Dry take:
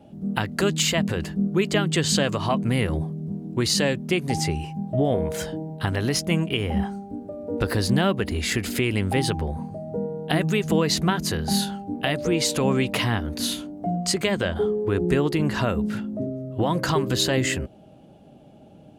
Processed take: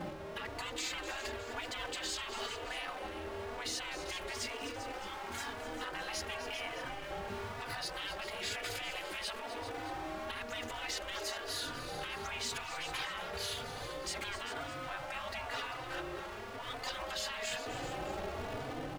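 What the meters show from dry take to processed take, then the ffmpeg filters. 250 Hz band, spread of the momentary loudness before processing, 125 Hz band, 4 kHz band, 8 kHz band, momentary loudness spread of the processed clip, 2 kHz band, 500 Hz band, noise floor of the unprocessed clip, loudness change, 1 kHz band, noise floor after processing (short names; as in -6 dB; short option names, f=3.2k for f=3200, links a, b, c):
-24.5 dB, 9 LU, -25.5 dB, -11.5 dB, -14.0 dB, 4 LU, -10.0 dB, -17.0 dB, -49 dBFS, -15.5 dB, -10.0 dB, -44 dBFS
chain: -filter_complex "[0:a]aeval=exprs='val(0)+0.5*0.0355*sgn(val(0))':c=same,bandreject=f=1k:w=25,dynaudnorm=f=160:g=5:m=4dB,lowpass=f=2k:p=1,afftfilt=real='re*lt(hypot(re,im),0.141)':imag='im*lt(hypot(re,im),0.141)':win_size=1024:overlap=0.75,alimiter=limit=-23dB:level=0:latency=1:release=40,aecho=1:1:254|395|614:0.251|0.266|0.141,asplit=2[a][b];[b]adelay=3.4,afreqshift=1[c];[a][c]amix=inputs=2:normalize=1,volume=-3dB"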